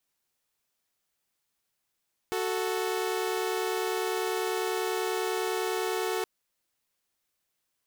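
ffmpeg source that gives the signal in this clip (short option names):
-f lavfi -i "aevalsrc='0.0398*((2*mod(369.99*t,1)-1)+(2*mod(440*t,1)-1))':d=3.92:s=44100"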